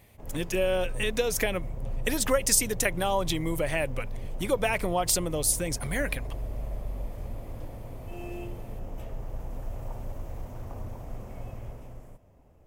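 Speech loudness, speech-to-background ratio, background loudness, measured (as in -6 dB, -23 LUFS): -27.5 LUFS, 13.0 dB, -40.5 LUFS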